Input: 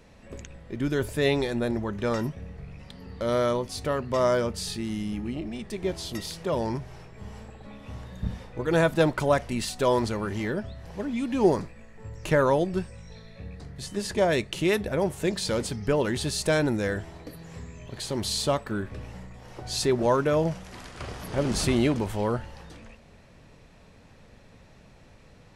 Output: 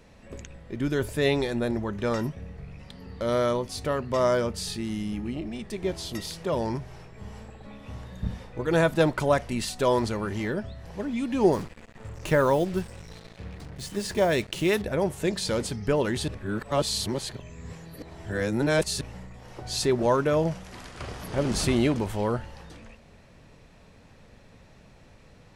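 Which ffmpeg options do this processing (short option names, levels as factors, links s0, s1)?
-filter_complex "[0:a]asettb=1/sr,asplit=3[s0][s1][s2];[s0]atrim=end=11.534[s3];[s1]atrim=start=11.53:end=14.82,asetpts=PTS-STARTPTS,afade=t=in:d=0.004:c=qsin,afade=t=out:st=3.286:d=0.004:c=qsin,acrusher=bits=6:mix=0:aa=0.5[s4];[s2]atrim=start=14.816[s5];[s3][s4]acrossfade=d=0.004:c1=hsin:c2=qsin[s6];[s6][s5]acrossfade=d=0.004:c1=qsin:c2=hsin,asplit=3[s7][s8][s9];[s7]atrim=end=16.282[s10];[s8]atrim=start=16.278:end=19.012,asetpts=PTS-STARTPTS,areverse[s11];[s9]atrim=start=19.008[s12];[s10][s11]acrossfade=d=0.004:c1=hsin:c2=hsin[s13];[s13][s12]acrossfade=d=0.004:c1=hsin:c2=hsin"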